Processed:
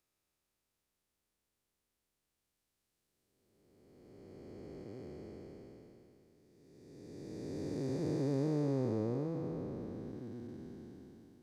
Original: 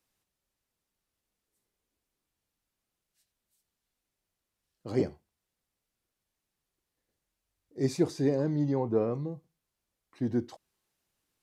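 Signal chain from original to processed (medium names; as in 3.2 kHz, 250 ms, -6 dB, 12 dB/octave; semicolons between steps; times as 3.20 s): spectral blur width 1360 ms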